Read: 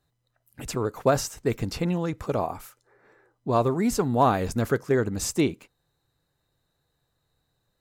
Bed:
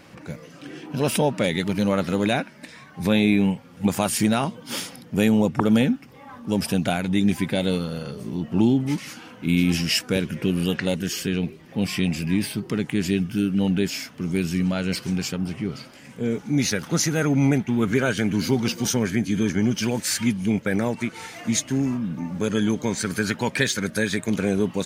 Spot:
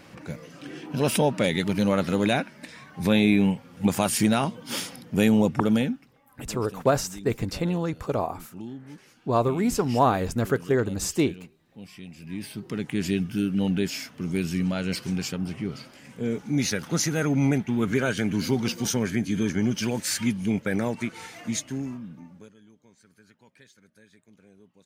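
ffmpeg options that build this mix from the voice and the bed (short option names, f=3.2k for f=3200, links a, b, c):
-filter_complex "[0:a]adelay=5800,volume=0dB[a];[1:a]volume=15.5dB,afade=t=out:st=5.52:d=0.7:silence=0.11885,afade=t=in:st=12.15:d=0.9:silence=0.149624,afade=t=out:st=21.09:d=1.45:silence=0.0316228[b];[a][b]amix=inputs=2:normalize=0"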